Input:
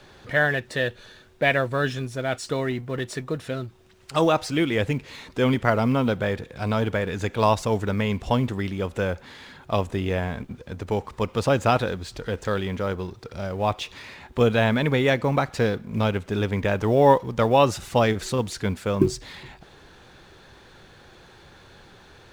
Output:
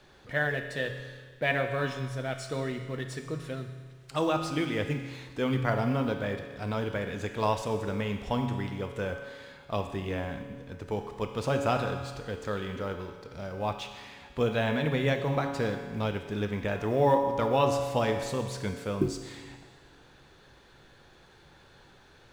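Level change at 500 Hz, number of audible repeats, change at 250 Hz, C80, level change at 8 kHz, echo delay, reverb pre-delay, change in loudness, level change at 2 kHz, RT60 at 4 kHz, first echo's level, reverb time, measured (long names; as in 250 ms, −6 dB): −6.5 dB, no echo audible, −7.0 dB, 8.0 dB, −7.0 dB, no echo audible, 7 ms, −6.5 dB, −7.0 dB, 1.6 s, no echo audible, 1.6 s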